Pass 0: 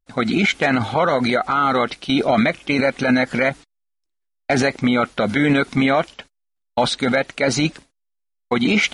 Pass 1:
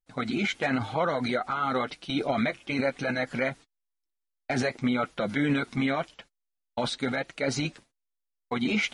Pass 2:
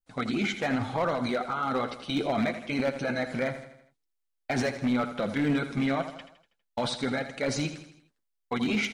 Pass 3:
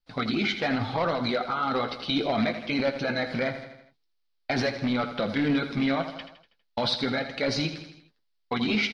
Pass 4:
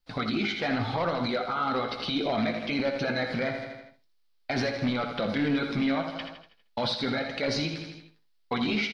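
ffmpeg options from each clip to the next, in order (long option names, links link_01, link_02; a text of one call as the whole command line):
ffmpeg -i in.wav -af "flanger=delay=5.7:depth=3.4:regen=-24:speed=0.96:shape=triangular,volume=-6.5dB" out.wav
ffmpeg -i in.wav -filter_complex "[0:a]adynamicequalizer=threshold=0.00794:dfrequency=2400:dqfactor=0.81:tfrequency=2400:tqfactor=0.81:attack=5:release=100:ratio=0.375:range=2.5:mode=cutabove:tftype=bell,asoftclip=type=hard:threshold=-21.5dB,asplit=2[link_01][link_02];[link_02]aecho=0:1:81|162|243|324|405:0.282|0.141|0.0705|0.0352|0.0176[link_03];[link_01][link_03]amix=inputs=2:normalize=0" out.wav
ffmpeg -i in.wav -filter_complex "[0:a]asplit=2[link_01][link_02];[link_02]adelay=18,volume=-12dB[link_03];[link_01][link_03]amix=inputs=2:normalize=0,asplit=2[link_04][link_05];[link_05]acompressor=threshold=-36dB:ratio=6,volume=-1dB[link_06];[link_04][link_06]amix=inputs=2:normalize=0,highshelf=frequency=6000:width_type=q:width=3:gain=-9.5,volume=-1dB" out.wav
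ffmpeg -i in.wav -filter_complex "[0:a]alimiter=level_in=0.5dB:limit=-24dB:level=0:latency=1:release=285,volume=-0.5dB,asplit=2[link_01][link_02];[link_02]adelay=63,lowpass=frequency=4400:poles=1,volume=-10.5dB,asplit=2[link_03][link_04];[link_04]adelay=63,lowpass=frequency=4400:poles=1,volume=0.19,asplit=2[link_05][link_06];[link_06]adelay=63,lowpass=frequency=4400:poles=1,volume=0.19[link_07];[link_01][link_03][link_05][link_07]amix=inputs=4:normalize=0,volume=4.5dB" out.wav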